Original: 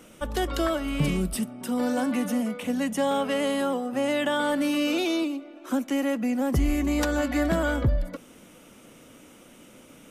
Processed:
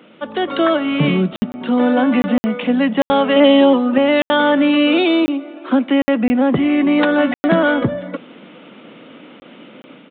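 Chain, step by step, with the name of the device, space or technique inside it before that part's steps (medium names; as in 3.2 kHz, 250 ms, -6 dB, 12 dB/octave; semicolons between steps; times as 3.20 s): call with lost packets (high-pass 160 Hz 24 dB/octave; resampled via 8 kHz; level rider gain up to 6 dB; lost packets of 20 ms bursts); 3.36–3.98 s: comb 3.3 ms, depth 98%; trim +5.5 dB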